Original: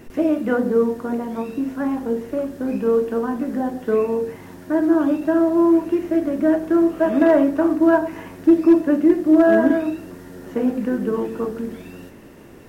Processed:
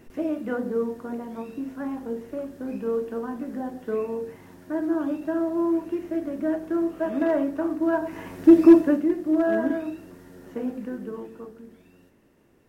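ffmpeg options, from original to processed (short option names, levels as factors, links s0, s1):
-af "volume=1.26,afade=t=in:st=7.93:d=0.73:silence=0.298538,afade=t=out:st=8.66:d=0.4:silence=0.298538,afade=t=out:st=10.47:d=1.11:silence=0.354813"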